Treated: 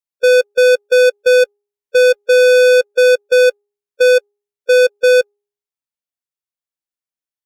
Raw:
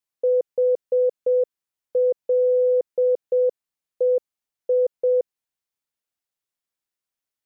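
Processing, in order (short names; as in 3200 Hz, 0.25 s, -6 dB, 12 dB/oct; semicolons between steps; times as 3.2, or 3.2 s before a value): de-hum 409.6 Hz, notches 39; sample leveller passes 5; harmonic-percussive split percussive -14 dB; gain +7.5 dB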